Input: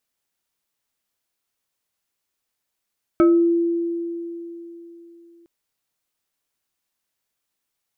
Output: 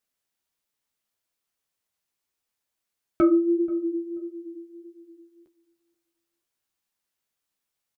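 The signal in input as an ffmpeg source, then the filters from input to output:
-f lavfi -i "aevalsrc='0.316*pow(10,-3*t/3.48)*sin(2*PI*339*t+0.68*pow(10,-3*t/0.39)*sin(2*PI*2.8*339*t))':duration=2.26:sample_rate=44100"
-filter_complex "[0:a]flanger=delay=9.5:depth=6.5:regen=-24:speed=1.6:shape=sinusoidal,asplit=2[link_01][link_02];[link_02]adelay=483,lowpass=frequency=890:poles=1,volume=-19.5dB,asplit=2[link_03][link_04];[link_04]adelay=483,lowpass=frequency=890:poles=1,volume=0.24[link_05];[link_01][link_03][link_05]amix=inputs=3:normalize=0"

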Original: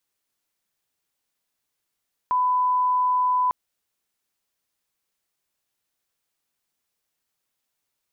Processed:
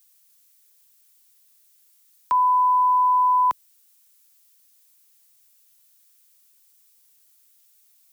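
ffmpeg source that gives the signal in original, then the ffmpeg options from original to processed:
-f lavfi -i "sine=frequency=1000:duration=1.2:sample_rate=44100,volume=0.06dB"
-filter_complex "[0:a]acrossover=split=140|260|450[link_01][link_02][link_03][link_04];[link_04]crystalizer=i=7:c=0[link_05];[link_01][link_02][link_03][link_05]amix=inputs=4:normalize=0"

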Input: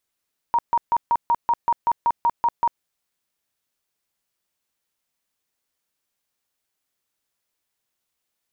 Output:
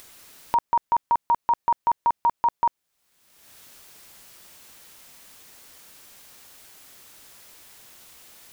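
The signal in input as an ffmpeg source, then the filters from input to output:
-f lavfi -i "aevalsrc='0.178*sin(2*PI*942*mod(t,0.19))*lt(mod(t,0.19),44/942)':duration=2.28:sample_rate=44100"
-af "acompressor=mode=upward:threshold=-25dB:ratio=2.5"

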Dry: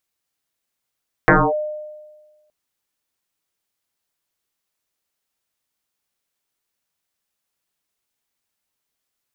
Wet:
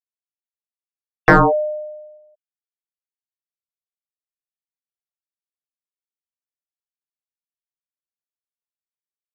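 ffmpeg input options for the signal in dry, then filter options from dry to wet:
-f lavfi -i "aevalsrc='0.447*pow(10,-3*t/1.39)*sin(2*PI*607*t+8.7*clip(1-t/0.25,0,1)*sin(2*PI*0.26*607*t))':duration=1.22:sample_rate=44100"
-filter_complex "[0:a]afftfilt=real='re*gte(hypot(re,im),0.0224)':imag='im*gte(hypot(re,im),0.0224)':win_size=1024:overlap=0.75,asplit=2[link_01][link_02];[link_02]volume=12.5dB,asoftclip=hard,volume=-12.5dB,volume=-5dB[link_03];[link_01][link_03]amix=inputs=2:normalize=0"

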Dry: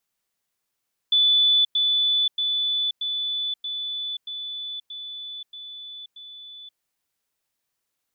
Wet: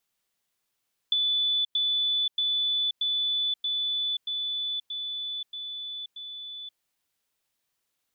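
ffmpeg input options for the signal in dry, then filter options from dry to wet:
-f lavfi -i "aevalsrc='pow(10,(-15-3*floor(t/0.63))/20)*sin(2*PI*3480*t)*clip(min(mod(t,0.63),0.53-mod(t,0.63))/0.005,0,1)':duration=5.67:sample_rate=44100"
-af "equalizer=frequency=3300:width_type=o:width=0.77:gain=2.5,acompressor=threshold=-25dB:ratio=6"

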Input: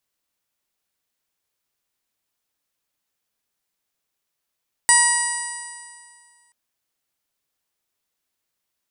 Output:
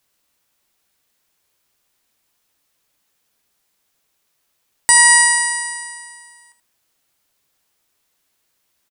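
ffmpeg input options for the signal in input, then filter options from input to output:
-f lavfi -i "aevalsrc='0.112*pow(10,-3*t/1.99)*sin(2*PI*953.71*t)+0.15*pow(10,-3*t/1.99)*sin(2*PI*1911.71*t)+0.0282*pow(10,-3*t/1.99)*sin(2*PI*2878.23*t)+0.0158*pow(10,-3*t/1.99)*sin(2*PI*3857.47*t)+0.0631*pow(10,-3*t/1.99)*sin(2*PI*4853.52*t)+0.0398*pow(10,-3*t/1.99)*sin(2*PI*5870.36*t)+0.0316*pow(10,-3*t/1.99)*sin(2*PI*6911.81*t)+0.178*pow(10,-3*t/1.99)*sin(2*PI*7981.57*t)+0.188*pow(10,-3*t/1.99)*sin(2*PI*9083.12*t)':duration=1.63:sample_rate=44100"
-filter_complex "[0:a]asplit=2[link_01][link_02];[link_02]aecho=0:1:14|79:0.282|0.237[link_03];[link_01][link_03]amix=inputs=2:normalize=0,alimiter=level_in=10.5dB:limit=-1dB:release=50:level=0:latency=1"

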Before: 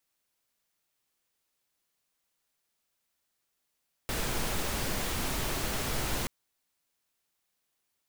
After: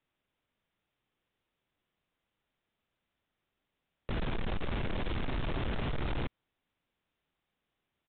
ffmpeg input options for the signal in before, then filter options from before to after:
-f lavfi -i "anoisesrc=color=pink:amplitude=0.136:duration=2.18:sample_rate=44100:seed=1"
-af "lowshelf=frequency=400:gain=9,aresample=8000,asoftclip=type=tanh:threshold=-29.5dB,aresample=44100"

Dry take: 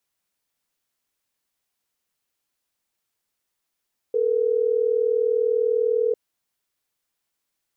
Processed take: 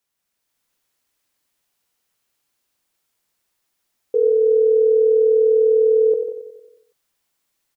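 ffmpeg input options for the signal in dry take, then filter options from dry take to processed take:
-f lavfi -i "aevalsrc='0.0891*(sin(2*PI*440*t)+sin(2*PI*480*t))*clip(min(mod(t,6),2-mod(t,6))/0.005,0,1)':duration=3.12:sample_rate=44100"
-filter_complex "[0:a]asplit=2[link_01][link_02];[link_02]aecho=0:1:91|182|273|364|455|546|637:0.398|0.227|0.129|0.0737|0.042|0.024|0.0137[link_03];[link_01][link_03]amix=inputs=2:normalize=0,dynaudnorm=framelen=180:gausssize=5:maxgain=5dB,asplit=2[link_04][link_05];[link_05]aecho=0:1:147:0.316[link_06];[link_04][link_06]amix=inputs=2:normalize=0"

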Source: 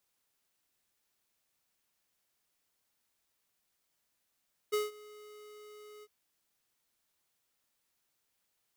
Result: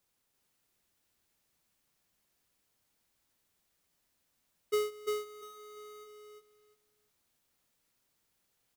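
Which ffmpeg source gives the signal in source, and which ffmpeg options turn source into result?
-f lavfi -i "aevalsrc='0.0355*(2*lt(mod(421*t,1),0.5)-1)':duration=1.354:sample_rate=44100,afade=type=in:duration=0.018,afade=type=out:start_time=0.018:duration=0.171:silence=0.0708,afade=type=out:start_time=1.31:duration=0.044"
-filter_complex "[0:a]lowshelf=frequency=380:gain=7,asplit=2[link_01][link_02];[link_02]aecho=0:1:346|692|1038:0.708|0.135|0.0256[link_03];[link_01][link_03]amix=inputs=2:normalize=0"

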